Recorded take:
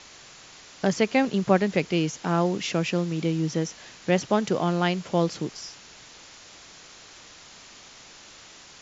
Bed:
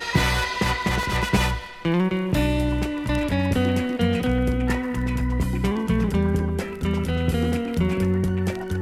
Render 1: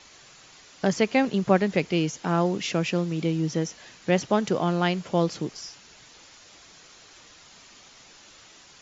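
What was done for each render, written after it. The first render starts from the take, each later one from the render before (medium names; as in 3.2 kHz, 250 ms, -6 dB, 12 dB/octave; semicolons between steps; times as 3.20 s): noise reduction 6 dB, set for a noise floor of -49 dBFS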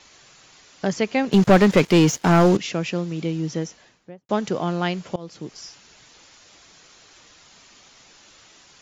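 1.32–2.57 s: waveshaping leveller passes 3; 3.55–4.29 s: studio fade out; 5.16–5.63 s: fade in, from -23.5 dB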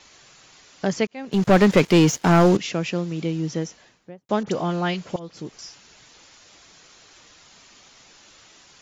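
1.07–1.63 s: fade in; 4.43–5.59 s: phase dispersion highs, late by 41 ms, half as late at 2.1 kHz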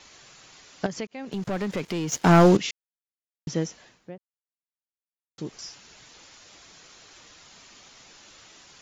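0.86–2.12 s: compression 2.5:1, threshold -33 dBFS; 2.71–3.47 s: mute; 4.18–5.38 s: mute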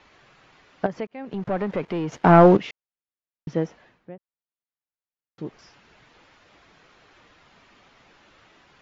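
low-pass 2.3 kHz 12 dB/octave; dynamic bell 700 Hz, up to +6 dB, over -38 dBFS, Q 0.77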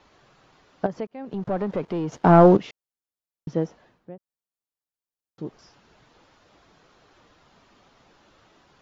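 peaking EQ 2.2 kHz -7.5 dB 1.2 oct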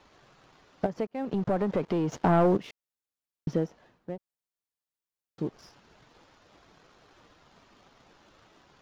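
compression 2:1, threshold -31 dBFS, peak gain reduction 12.5 dB; waveshaping leveller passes 1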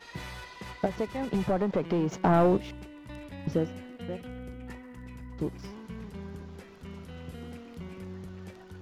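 add bed -20 dB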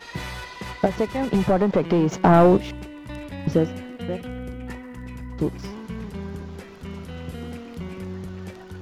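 trim +8 dB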